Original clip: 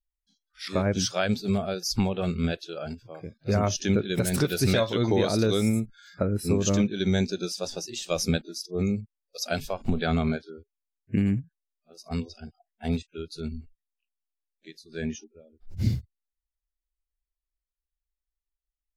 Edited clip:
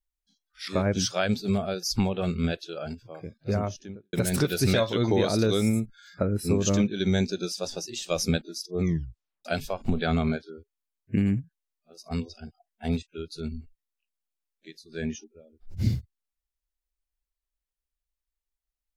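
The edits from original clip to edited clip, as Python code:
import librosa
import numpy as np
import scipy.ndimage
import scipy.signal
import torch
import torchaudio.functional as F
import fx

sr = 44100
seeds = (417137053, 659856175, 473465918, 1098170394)

y = fx.studio_fade_out(x, sr, start_s=3.27, length_s=0.86)
y = fx.edit(y, sr, fx.tape_stop(start_s=8.82, length_s=0.63), tone=tone)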